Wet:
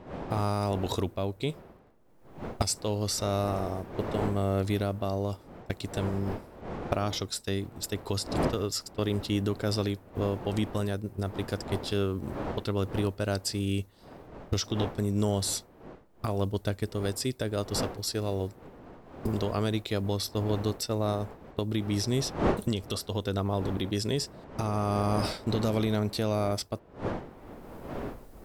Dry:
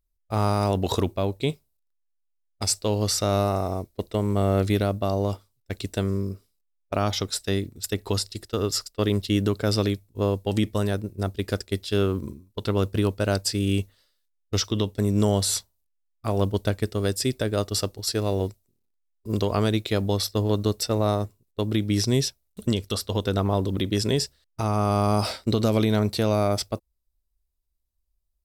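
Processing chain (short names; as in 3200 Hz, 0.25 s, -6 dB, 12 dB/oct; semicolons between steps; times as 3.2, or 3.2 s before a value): recorder AGC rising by 31 dB/s; wind noise 570 Hz -34 dBFS; gain -6 dB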